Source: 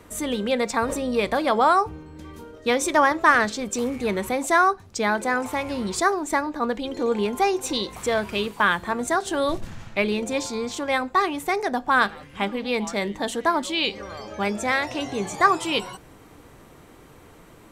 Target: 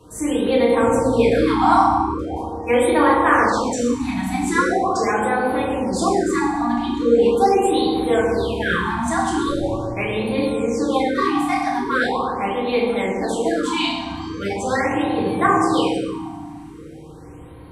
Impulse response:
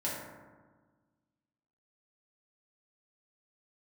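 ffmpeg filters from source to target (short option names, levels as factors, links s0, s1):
-filter_complex "[0:a]lowshelf=f=220:g=4[s0];[1:a]atrim=start_sample=2205,asetrate=23373,aresample=44100[s1];[s0][s1]afir=irnorm=-1:irlink=0,afftfilt=real='re*(1-between(b*sr/1024,430*pow(6600/430,0.5+0.5*sin(2*PI*0.41*pts/sr))/1.41,430*pow(6600/430,0.5+0.5*sin(2*PI*0.41*pts/sr))*1.41))':imag='im*(1-between(b*sr/1024,430*pow(6600/430,0.5+0.5*sin(2*PI*0.41*pts/sr))/1.41,430*pow(6600/430,0.5+0.5*sin(2*PI*0.41*pts/sr))*1.41))':win_size=1024:overlap=0.75,volume=0.531"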